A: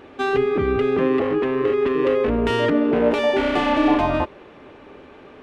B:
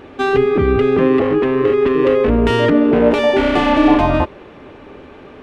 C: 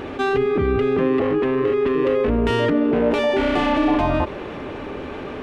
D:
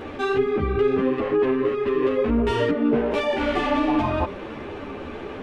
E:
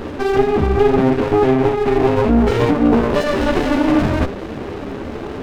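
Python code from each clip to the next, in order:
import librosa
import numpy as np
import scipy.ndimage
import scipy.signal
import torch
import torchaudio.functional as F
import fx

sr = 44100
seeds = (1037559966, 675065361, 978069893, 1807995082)

y1 = fx.low_shelf(x, sr, hz=200.0, db=5.5)
y1 = F.gain(torch.from_numpy(y1), 4.5).numpy()
y2 = fx.env_flatten(y1, sr, amount_pct=50)
y2 = F.gain(torch.from_numpy(y2), -8.0).numpy()
y3 = fx.ensemble(y2, sr)
y4 = fx.running_max(y3, sr, window=33)
y4 = F.gain(torch.from_numpy(y4), 8.5).numpy()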